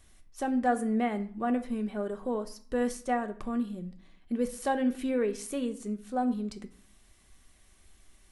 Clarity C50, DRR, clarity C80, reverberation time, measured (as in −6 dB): 15.5 dB, 6.5 dB, 18.5 dB, 0.50 s